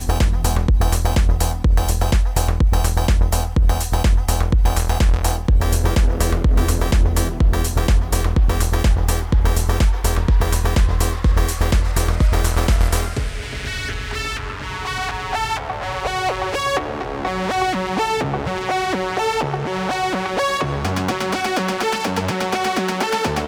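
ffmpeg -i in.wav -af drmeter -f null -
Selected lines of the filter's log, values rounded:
Channel 1: DR: 4.5
Overall DR: 4.5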